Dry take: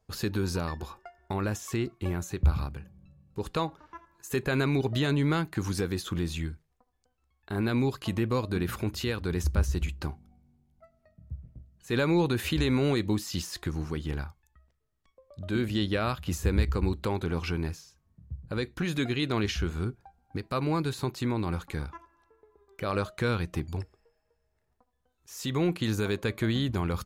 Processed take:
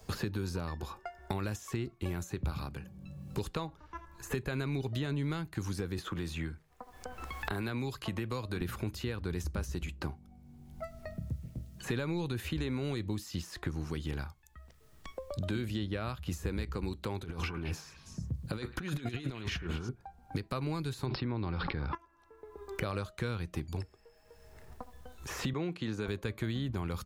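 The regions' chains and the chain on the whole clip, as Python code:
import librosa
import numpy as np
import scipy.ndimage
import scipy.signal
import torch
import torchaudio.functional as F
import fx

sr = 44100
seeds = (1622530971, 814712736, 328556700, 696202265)

y = fx.chain(x, sr, fx.low_shelf(hz=460.0, db=-8.0),
    fx.band_squash(depth_pct=70), at=(5.98, 8.61))
y = fx.chain(y, sr, fx.over_compress(threshold_db=-34.0, ratio=-0.5),
    fx.echo_stepped(ms=108, hz=1100.0, octaves=1.4, feedback_pct=70, wet_db=-6.0), at=(17.22, 19.89))
y = fx.chain(y, sr, fx.brickwall_lowpass(high_hz=5500.0),
    fx.env_flatten(amount_pct=100), at=(21.06, 21.95))
y = fx.chain(y, sr, fx.highpass(hz=190.0, slope=12),
    fx.air_absorb(metres=77.0), at=(25.53, 26.08))
y = fx.low_shelf(y, sr, hz=84.0, db=6.5)
y = fx.band_squash(y, sr, depth_pct=100)
y = F.gain(torch.from_numpy(y), -8.0).numpy()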